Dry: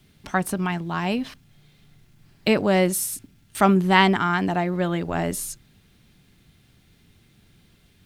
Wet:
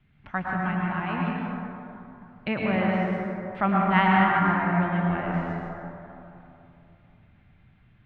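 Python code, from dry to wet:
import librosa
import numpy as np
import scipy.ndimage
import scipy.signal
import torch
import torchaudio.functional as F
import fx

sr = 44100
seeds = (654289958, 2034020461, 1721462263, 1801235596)

y = scipy.signal.sosfilt(scipy.signal.butter(4, 2500.0, 'lowpass', fs=sr, output='sos'), x)
y = fx.peak_eq(y, sr, hz=400.0, db=-9.5, octaves=1.3)
y = fx.rev_plate(y, sr, seeds[0], rt60_s=2.9, hf_ratio=0.35, predelay_ms=95, drr_db=-3.5)
y = F.gain(torch.from_numpy(y), -4.5).numpy()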